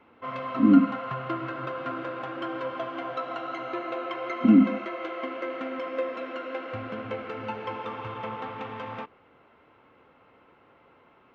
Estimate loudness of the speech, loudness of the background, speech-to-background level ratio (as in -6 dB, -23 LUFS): -21.0 LUFS, -34.0 LUFS, 13.0 dB